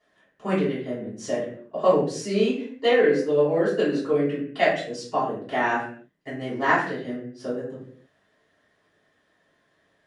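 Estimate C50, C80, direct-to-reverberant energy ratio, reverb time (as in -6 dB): 3.5 dB, 8.0 dB, -11.5 dB, not exponential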